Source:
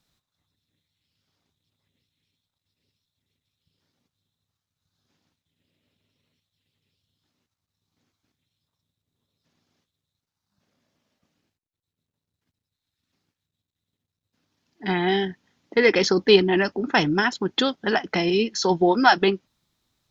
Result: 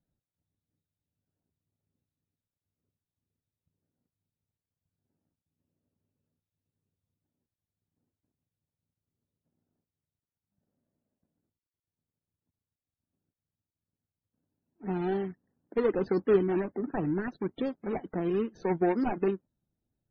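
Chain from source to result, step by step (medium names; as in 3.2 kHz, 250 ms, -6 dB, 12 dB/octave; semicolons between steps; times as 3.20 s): median filter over 41 samples; loudest bins only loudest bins 64; trim -6 dB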